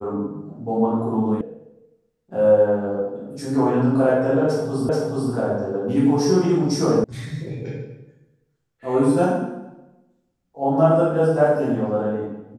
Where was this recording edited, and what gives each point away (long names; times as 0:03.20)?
0:01.41: cut off before it has died away
0:04.89: the same again, the last 0.43 s
0:07.04: cut off before it has died away